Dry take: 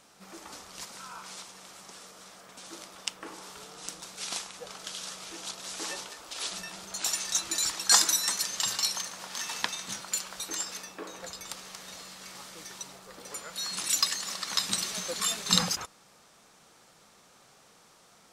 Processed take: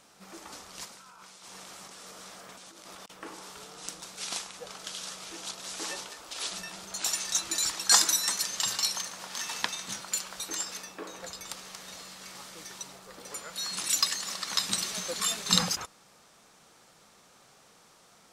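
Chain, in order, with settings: 0.86–3.10 s: compressor with a negative ratio -50 dBFS, ratio -1

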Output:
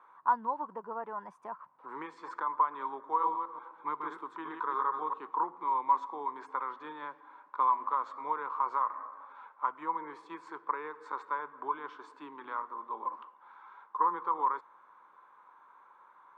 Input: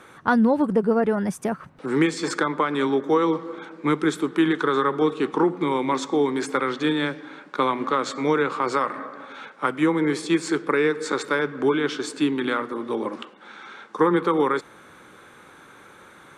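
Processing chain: 3.07–5.18 s: chunks repeated in reverse 129 ms, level -4.5 dB; band-pass filter 1 kHz, Q 11; trim +3 dB

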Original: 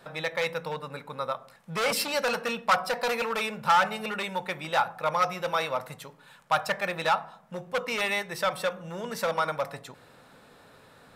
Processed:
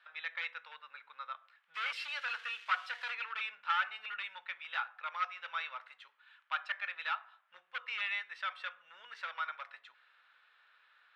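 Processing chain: 1.74–3.10 s: zero-crossing glitches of -25 dBFS; Chebyshev band-pass 1.4–3.2 kHz, order 2; trim -6 dB

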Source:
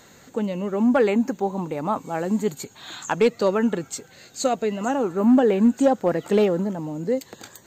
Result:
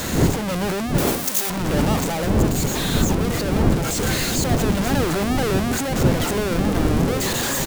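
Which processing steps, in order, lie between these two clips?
one-bit comparator; wind noise 250 Hz -18 dBFS; 0.98–1.50 s: RIAA curve recording; gain riding 0.5 s; echo from a far wall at 290 m, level -7 dB; trim -3 dB

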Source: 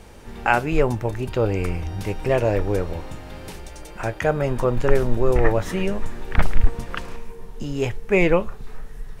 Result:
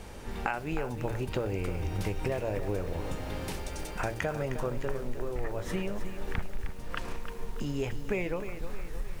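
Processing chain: de-hum 115.5 Hz, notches 6; compression 16:1, threshold -28 dBFS, peak gain reduction 22.5 dB; bit-crushed delay 310 ms, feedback 55%, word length 8-bit, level -9.5 dB

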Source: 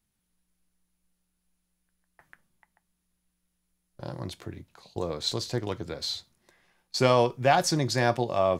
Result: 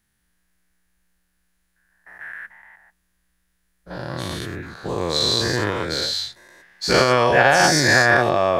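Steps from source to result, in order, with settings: every event in the spectrogram widened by 240 ms; peak limiter -7 dBFS, peak gain reduction 6 dB; peaking EQ 1.7 kHz +11.5 dB 0.49 oct; trim +1.5 dB

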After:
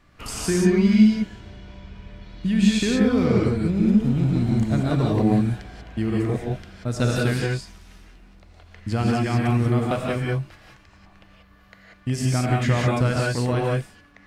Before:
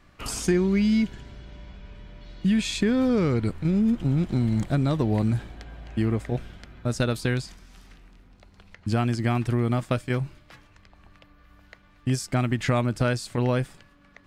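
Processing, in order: gated-style reverb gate 210 ms rising, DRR -3 dB; trim -1.5 dB

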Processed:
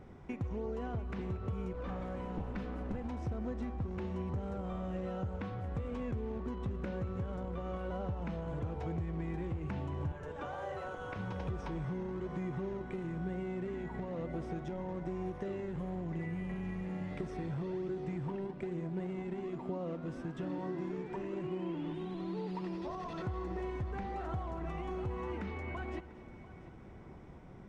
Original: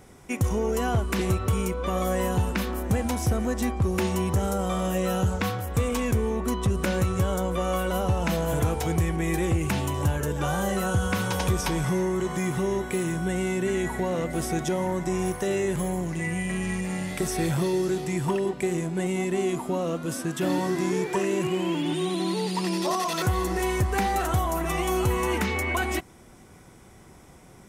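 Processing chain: 1.73–3.04 s: comb filter that takes the minimum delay 4 ms; 10.12–11.16 s: high-pass 460 Hz 24 dB/octave; compression 5:1, threshold -35 dBFS, peak gain reduction 14 dB; in parallel at -9.5 dB: decimation with a swept rate 42×, swing 160% 1.1 Hz; on the sum: tape spacing loss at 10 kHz 32 dB; multi-head delay 231 ms, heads first and third, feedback 49%, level -18 dB; on a send at -19.5 dB: reverberation RT60 0.35 s, pre-delay 75 ms; on the sum: trim -2.5 dB

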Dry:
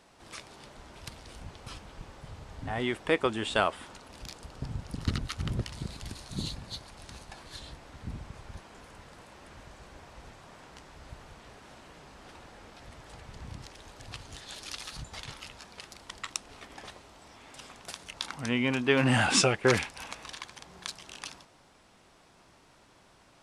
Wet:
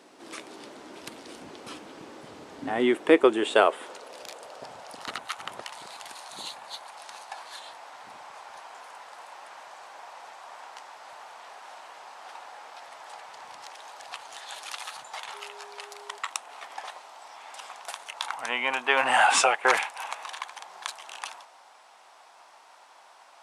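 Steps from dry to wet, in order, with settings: high-pass sweep 300 Hz -> 810 Hz, 2.87–5.29 s; dynamic bell 5 kHz, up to -7 dB, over -53 dBFS, Q 1.9; 15.33–16.17 s: whistle 410 Hz -52 dBFS; trim +4 dB

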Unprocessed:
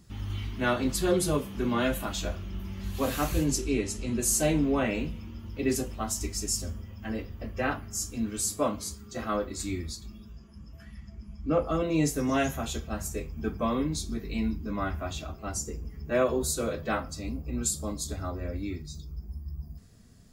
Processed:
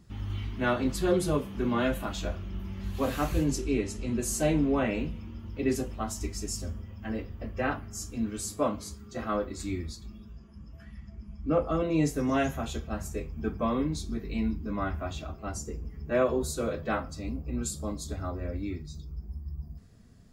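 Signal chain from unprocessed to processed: treble shelf 4 kHz -8.5 dB

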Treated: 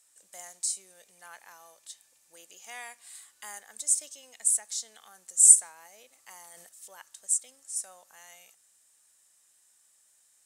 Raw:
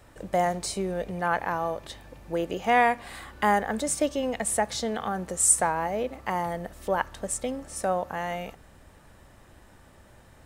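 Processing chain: band-pass filter 7.7 kHz, Q 1.9; treble shelf 7.6 kHz +11.5 dB; 6.15–6.69 s: decay stretcher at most 23 dB/s

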